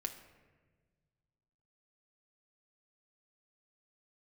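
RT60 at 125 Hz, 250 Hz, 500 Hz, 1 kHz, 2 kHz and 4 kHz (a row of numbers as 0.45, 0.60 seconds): 2.5, 1.9, 1.6, 1.2, 1.3, 0.80 seconds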